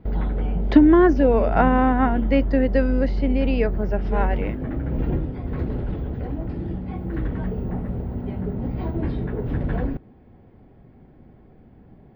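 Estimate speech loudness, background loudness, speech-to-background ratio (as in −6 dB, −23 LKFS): −20.0 LKFS, −27.0 LKFS, 7.0 dB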